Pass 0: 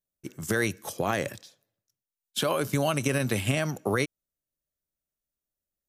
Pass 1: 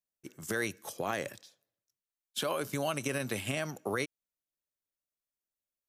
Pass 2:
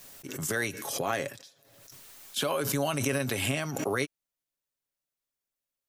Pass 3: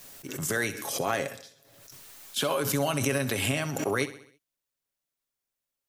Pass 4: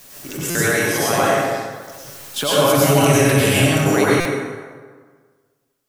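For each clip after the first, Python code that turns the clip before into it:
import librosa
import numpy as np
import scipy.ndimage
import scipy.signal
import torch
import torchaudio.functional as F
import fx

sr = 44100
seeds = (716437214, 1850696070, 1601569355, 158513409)

y1 = fx.low_shelf(x, sr, hz=160.0, db=-9.5)
y1 = y1 * librosa.db_to_amplitude(-5.5)
y2 = y1 + 0.39 * np.pad(y1, (int(7.3 * sr / 1000.0), 0))[:len(y1)]
y2 = fx.pre_swell(y2, sr, db_per_s=45.0)
y2 = y2 * librosa.db_to_amplitude(2.5)
y3 = fx.echo_feedback(y2, sr, ms=65, feedback_pct=52, wet_db=-15.0)
y3 = y3 * librosa.db_to_amplitude(1.5)
y4 = fx.rev_plate(y3, sr, seeds[0], rt60_s=1.6, hf_ratio=0.6, predelay_ms=85, drr_db=-7.5)
y4 = fx.buffer_glitch(y4, sr, at_s=(0.5, 4.2), block=256, repeats=8)
y4 = y4 * librosa.db_to_amplitude(4.5)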